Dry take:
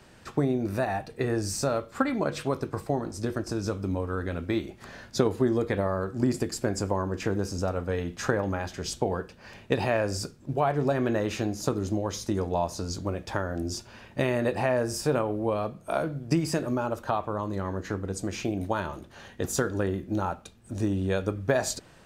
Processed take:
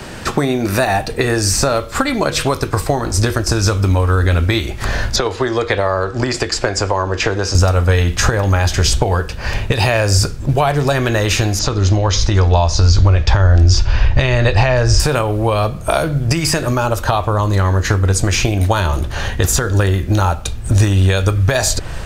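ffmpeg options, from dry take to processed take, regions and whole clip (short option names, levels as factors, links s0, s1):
-filter_complex "[0:a]asettb=1/sr,asplit=3[s0][s1][s2];[s0]atrim=end=5.164[s3];[s1]atrim=start=5.16:end=7.55,asetpts=PTS-STARTPTS,afade=t=in:d=0.004:c=qsin,afade=t=out:st=2.386:d=0.004:c=qsin,lowpass=8400,acrossover=split=350 6500:gain=0.251 1 0.2[s4][s5][s6];[s4][s5][s6]amix=inputs=3:normalize=0[s7];[s2]atrim=start=7.546[s8];[s3][s7]acrossfade=d=0.004:c1=hsin:c2=qsin[s9];[s9][s8]acrossfade=d=0.004:c1=qsin:c2=hsin,asettb=1/sr,asplit=3[s10][s11][s12];[s10]atrim=end=11.594[s13];[s11]atrim=start=11.59:end=15,asetpts=PTS-STARTPTS,afade=t=in:d=0.004:c=qsin,afade=t=out:st=3.406:d=0.004:c=qsin,asubboost=boost=5.5:cutoff=94,lowpass=f=5900:w=0.5412,lowpass=f=5900:w=1.3066[s14];[s12]atrim=start=14.996[s15];[s13][s14]acrossfade=d=0.004:c1=hsin:c2=qsin[s16];[s16][s15]acrossfade=d=0.004:c1=qsin:c2=hsin,acrossover=split=1000|3000[s17][s18][s19];[s17]acompressor=threshold=0.0112:ratio=4[s20];[s18]acompressor=threshold=0.00501:ratio=4[s21];[s19]acompressor=threshold=0.00891:ratio=4[s22];[s20][s21][s22]amix=inputs=3:normalize=0,asubboost=boost=8.5:cutoff=73,alimiter=level_in=16.8:limit=0.891:release=50:level=0:latency=1,volume=0.891"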